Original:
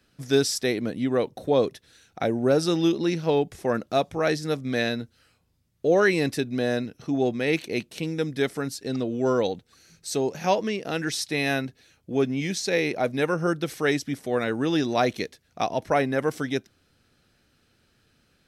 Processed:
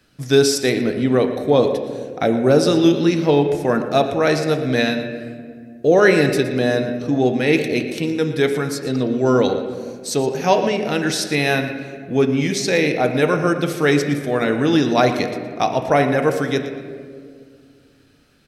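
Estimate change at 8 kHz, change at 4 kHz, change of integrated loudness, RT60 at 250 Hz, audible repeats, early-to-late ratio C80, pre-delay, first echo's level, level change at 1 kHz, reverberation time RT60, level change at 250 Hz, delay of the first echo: +6.0 dB, +6.5 dB, +7.5 dB, 2.8 s, 1, 8.5 dB, 6 ms, −14.5 dB, +7.5 dB, 2.1 s, +8.0 dB, 117 ms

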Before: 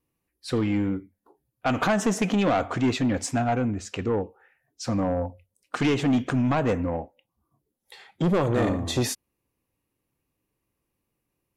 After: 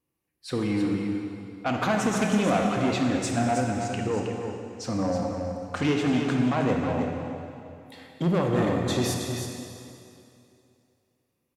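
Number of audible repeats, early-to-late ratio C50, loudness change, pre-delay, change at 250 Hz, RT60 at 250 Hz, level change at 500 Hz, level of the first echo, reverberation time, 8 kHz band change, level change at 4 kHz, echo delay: 1, 1.0 dB, −1.0 dB, 23 ms, 0.0 dB, 2.6 s, −0.5 dB, −7.0 dB, 2.6 s, −0.5 dB, 0.0 dB, 318 ms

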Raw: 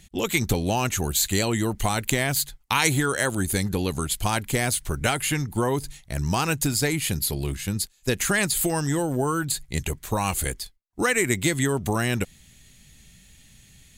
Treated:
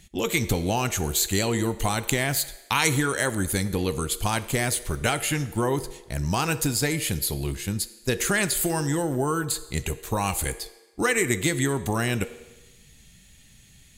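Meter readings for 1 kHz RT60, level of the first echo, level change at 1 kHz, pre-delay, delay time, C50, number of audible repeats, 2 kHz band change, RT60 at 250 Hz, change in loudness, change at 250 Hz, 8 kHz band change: 1.1 s, no echo audible, −1.0 dB, 8 ms, no echo audible, 14.0 dB, no echo audible, −1.0 dB, 1.1 s, −1.0 dB, −1.0 dB, −1.0 dB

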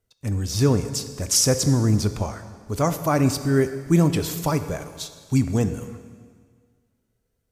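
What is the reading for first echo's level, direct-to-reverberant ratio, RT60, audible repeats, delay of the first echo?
no echo audible, 9.5 dB, 1.8 s, no echo audible, no echo audible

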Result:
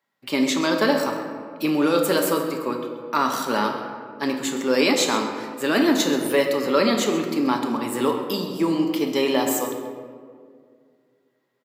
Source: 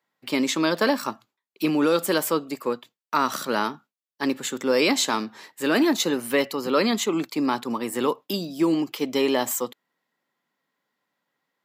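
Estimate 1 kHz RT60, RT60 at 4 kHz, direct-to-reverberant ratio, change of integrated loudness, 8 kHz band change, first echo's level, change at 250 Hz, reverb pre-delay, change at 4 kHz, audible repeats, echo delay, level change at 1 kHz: 1.8 s, 1.0 s, 2.0 dB, +2.0 dB, +1.0 dB, −14.5 dB, +2.0 dB, 3 ms, +1.5 dB, 1, 132 ms, +2.0 dB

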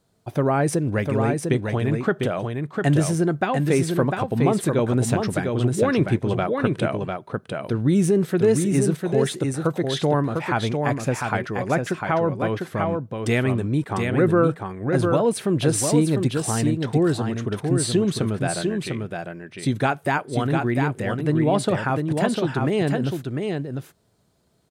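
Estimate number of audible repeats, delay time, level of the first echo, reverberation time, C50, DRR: 1, 700 ms, −4.5 dB, no reverb audible, no reverb audible, no reverb audible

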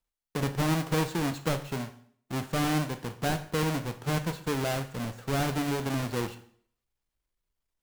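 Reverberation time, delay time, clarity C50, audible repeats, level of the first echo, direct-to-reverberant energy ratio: 0.55 s, no echo audible, 13.0 dB, no echo audible, no echo audible, 8.0 dB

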